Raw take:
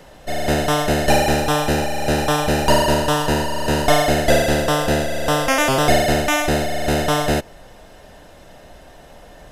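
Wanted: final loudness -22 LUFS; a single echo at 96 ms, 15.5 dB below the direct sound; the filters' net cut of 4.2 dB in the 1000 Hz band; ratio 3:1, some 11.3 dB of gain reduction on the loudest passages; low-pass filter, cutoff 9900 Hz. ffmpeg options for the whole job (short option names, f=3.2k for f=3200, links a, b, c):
-af "lowpass=9.9k,equalizer=f=1k:t=o:g=-6,acompressor=threshold=-26dB:ratio=3,aecho=1:1:96:0.168,volume=5.5dB"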